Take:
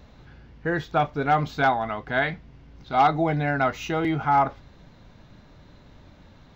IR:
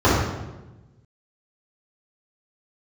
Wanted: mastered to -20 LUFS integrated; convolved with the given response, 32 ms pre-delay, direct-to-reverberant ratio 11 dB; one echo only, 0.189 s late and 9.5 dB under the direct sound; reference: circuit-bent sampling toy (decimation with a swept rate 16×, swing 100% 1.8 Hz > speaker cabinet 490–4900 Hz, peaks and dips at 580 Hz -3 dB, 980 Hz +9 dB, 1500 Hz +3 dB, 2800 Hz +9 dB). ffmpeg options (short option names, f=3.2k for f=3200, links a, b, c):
-filter_complex "[0:a]aecho=1:1:189:0.335,asplit=2[a][b];[1:a]atrim=start_sample=2205,adelay=32[c];[b][c]afir=irnorm=-1:irlink=0,volume=-35dB[d];[a][d]amix=inputs=2:normalize=0,acrusher=samples=16:mix=1:aa=0.000001:lfo=1:lforange=16:lforate=1.8,highpass=490,equalizer=f=580:t=q:w=4:g=-3,equalizer=f=980:t=q:w=4:g=9,equalizer=f=1.5k:t=q:w=4:g=3,equalizer=f=2.8k:t=q:w=4:g=9,lowpass=f=4.9k:w=0.5412,lowpass=f=4.9k:w=1.3066,volume=1.5dB"